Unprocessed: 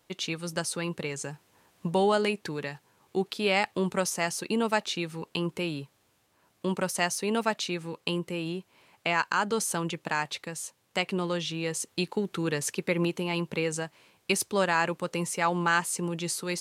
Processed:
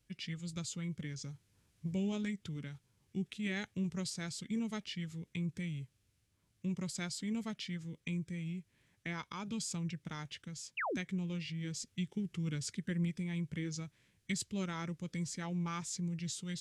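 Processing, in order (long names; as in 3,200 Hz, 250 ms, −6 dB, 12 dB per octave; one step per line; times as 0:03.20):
guitar amp tone stack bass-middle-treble 10-0-1
formants moved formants −4 semitones
sound drawn into the spectrogram fall, 0:10.77–0:10.97, 210–3,000 Hz −47 dBFS
level +11 dB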